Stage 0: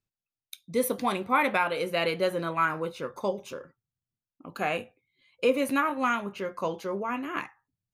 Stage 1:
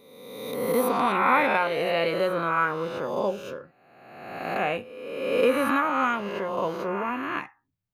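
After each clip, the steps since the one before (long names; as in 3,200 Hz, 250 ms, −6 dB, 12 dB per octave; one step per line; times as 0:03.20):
peak hold with a rise ahead of every peak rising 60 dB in 1.35 s
parametric band 8,100 Hz −10 dB 1.7 octaves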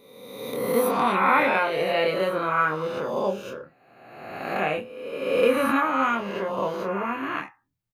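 double-tracking delay 26 ms −4.5 dB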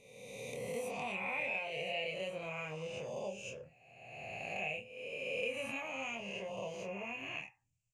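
drawn EQ curve 130 Hz 0 dB, 310 Hz −18 dB, 460 Hz −9 dB, 700 Hz −5 dB, 1,400 Hz −27 dB, 2,600 Hz +7 dB, 3,800 Hz −12 dB, 7,300 Hz +9 dB, 15,000 Hz −27 dB
downward compressor 2 to 1, threshold −44 dBFS, peak gain reduction 12.5 dB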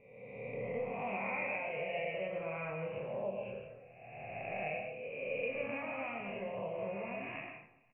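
Butterworth low-pass 2,400 Hz 48 dB per octave
repeating echo 271 ms, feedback 40%, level −23.5 dB
on a send at −3 dB: convolution reverb RT60 0.65 s, pre-delay 80 ms
on the sum: level +1 dB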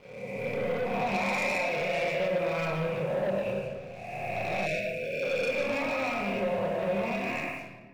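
leveller curve on the samples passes 3
rectangular room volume 1,500 cubic metres, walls mixed, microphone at 0.96 metres
time-frequency box erased 0:04.66–0:05.23, 690–1,400 Hz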